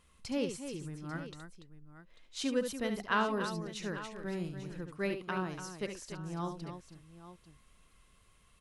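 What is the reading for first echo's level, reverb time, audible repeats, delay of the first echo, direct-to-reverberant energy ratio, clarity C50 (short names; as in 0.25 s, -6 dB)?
-8.0 dB, none, 3, 70 ms, none, none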